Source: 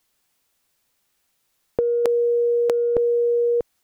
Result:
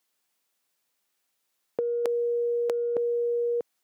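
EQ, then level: Bessel high-pass 230 Hz, order 2; -6.5 dB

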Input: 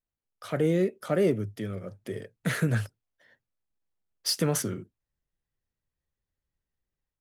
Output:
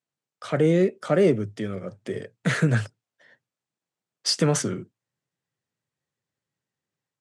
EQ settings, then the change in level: elliptic band-pass 120–8200 Hz, stop band 40 dB; +5.5 dB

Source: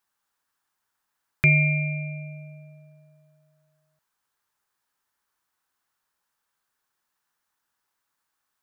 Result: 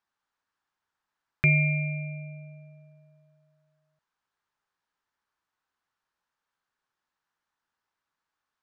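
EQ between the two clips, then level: distance through air 110 m; -2.5 dB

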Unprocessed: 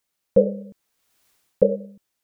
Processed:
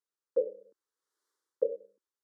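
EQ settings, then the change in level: ladder high-pass 280 Hz, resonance 25%; distance through air 54 m; static phaser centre 690 Hz, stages 6; -5.5 dB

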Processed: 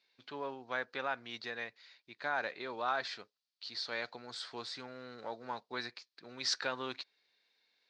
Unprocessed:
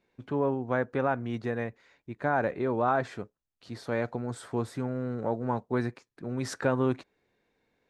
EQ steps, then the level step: band-pass filter 4.5 kHz, Q 3.6; distance through air 110 m; +17.5 dB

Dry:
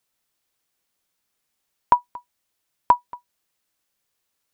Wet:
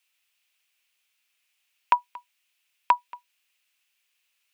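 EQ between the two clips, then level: high-pass 1.5 kHz 6 dB/octave; peaking EQ 2.6 kHz +14 dB 0.78 oct; 0.0 dB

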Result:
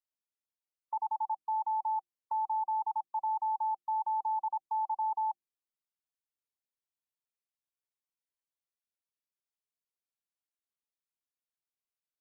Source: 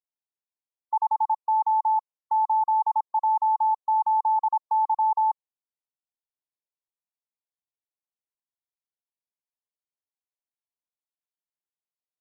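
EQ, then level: hum notches 50/100/150/200/250/300/350 Hz; band-stop 780 Hz, Q 12; dynamic bell 700 Hz, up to -5 dB, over -36 dBFS, Q 1.1; -5.0 dB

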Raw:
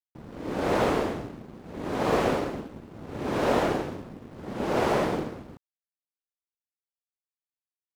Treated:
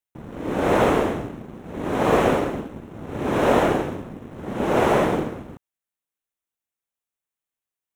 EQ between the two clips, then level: peaking EQ 4.7 kHz -13.5 dB 0.35 oct; +6.0 dB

